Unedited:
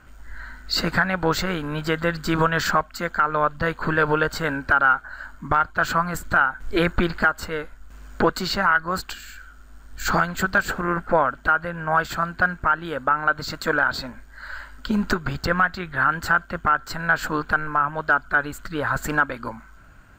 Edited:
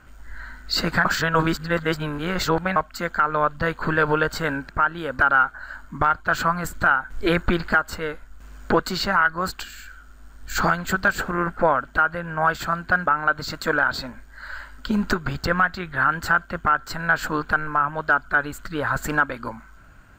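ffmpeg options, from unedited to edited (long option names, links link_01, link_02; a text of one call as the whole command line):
ffmpeg -i in.wav -filter_complex "[0:a]asplit=6[link_01][link_02][link_03][link_04][link_05][link_06];[link_01]atrim=end=1.052[link_07];[link_02]atrim=start=1.048:end=2.762,asetpts=PTS-STARTPTS,areverse[link_08];[link_03]atrim=start=2.758:end=4.692[link_09];[link_04]atrim=start=12.558:end=13.062[link_10];[link_05]atrim=start=4.688:end=12.562[link_11];[link_06]atrim=start=13.058[link_12];[link_07][link_08]acrossfade=duration=0.004:curve1=hsin:curve2=hsin[link_13];[link_13][link_09]acrossfade=duration=0.004:curve1=hsin:curve2=hsin[link_14];[link_14][link_10]acrossfade=duration=0.004:curve1=hsin:curve2=hsin[link_15];[link_15][link_11]acrossfade=duration=0.004:curve1=hsin:curve2=hsin[link_16];[link_16][link_12]acrossfade=duration=0.004:curve1=hsin:curve2=hsin" out.wav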